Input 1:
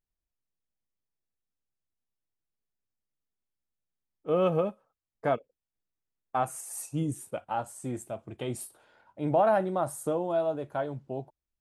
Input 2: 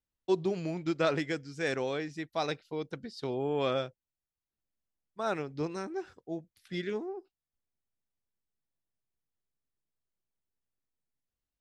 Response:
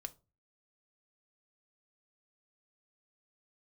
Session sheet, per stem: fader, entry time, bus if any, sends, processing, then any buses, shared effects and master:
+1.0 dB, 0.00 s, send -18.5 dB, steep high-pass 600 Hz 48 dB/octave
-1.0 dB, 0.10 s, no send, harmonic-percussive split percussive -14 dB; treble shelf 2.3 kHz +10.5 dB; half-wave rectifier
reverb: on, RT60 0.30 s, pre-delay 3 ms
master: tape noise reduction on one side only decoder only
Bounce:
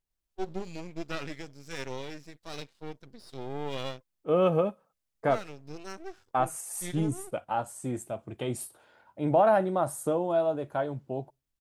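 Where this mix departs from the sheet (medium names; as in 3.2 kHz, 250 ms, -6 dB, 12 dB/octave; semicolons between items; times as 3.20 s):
stem 1: missing steep high-pass 600 Hz 48 dB/octave; master: missing tape noise reduction on one side only decoder only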